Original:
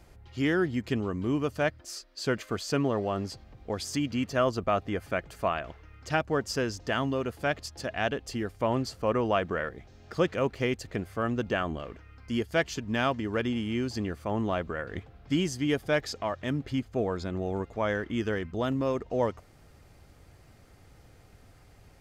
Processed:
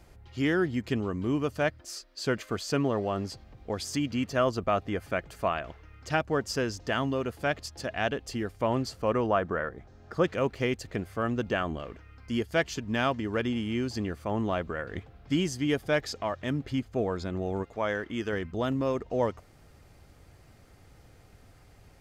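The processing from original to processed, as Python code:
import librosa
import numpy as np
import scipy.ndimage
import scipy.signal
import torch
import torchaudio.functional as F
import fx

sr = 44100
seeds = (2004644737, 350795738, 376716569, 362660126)

y = fx.high_shelf_res(x, sr, hz=1900.0, db=-6.0, q=1.5, at=(9.26, 10.24))
y = fx.low_shelf(y, sr, hz=220.0, db=-7.0, at=(17.63, 18.33))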